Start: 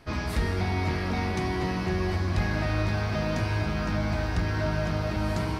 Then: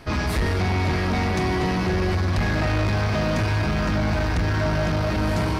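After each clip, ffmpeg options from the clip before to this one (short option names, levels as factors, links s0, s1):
-af "asoftclip=type=tanh:threshold=0.0473,volume=2.82"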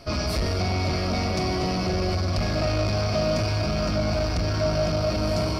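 -af "superequalizer=8b=2:9b=0.631:11b=0.447:14b=2.82,volume=0.708"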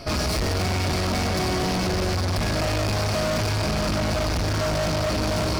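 -af "volume=31.6,asoftclip=hard,volume=0.0316,volume=2.37"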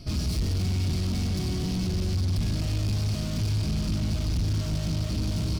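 -af "firequalizer=gain_entry='entry(150,0);entry(560,-18);entry(1700,-18);entry(3100,-8)':delay=0.05:min_phase=1"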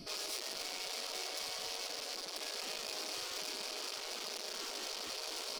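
-af "afftfilt=real='re*lt(hypot(re,im),0.0398)':imag='im*lt(hypot(re,im),0.0398)':win_size=1024:overlap=0.75,volume=0.891"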